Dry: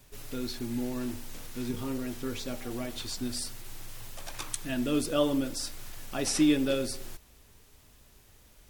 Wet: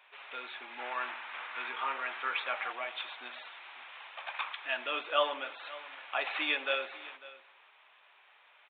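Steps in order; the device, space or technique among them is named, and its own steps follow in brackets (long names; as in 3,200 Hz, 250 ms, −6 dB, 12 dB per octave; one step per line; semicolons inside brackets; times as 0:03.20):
RIAA equalisation playback
single-tap delay 548 ms −18.5 dB
musical greeting card (downsampling to 8,000 Hz; high-pass filter 840 Hz 24 dB per octave; parametric band 2,400 Hz +5.5 dB 0.3 octaves)
0:00.79–0:02.72: parametric band 1,400 Hz +7.5 dB 1.7 octaves
level +7.5 dB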